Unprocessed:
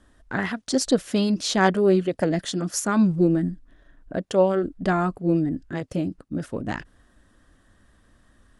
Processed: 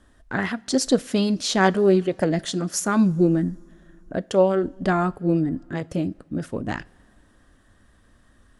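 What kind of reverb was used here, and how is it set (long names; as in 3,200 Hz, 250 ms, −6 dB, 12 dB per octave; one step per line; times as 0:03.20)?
coupled-rooms reverb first 0.35 s, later 2.9 s, from −18 dB, DRR 18.5 dB
level +1 dB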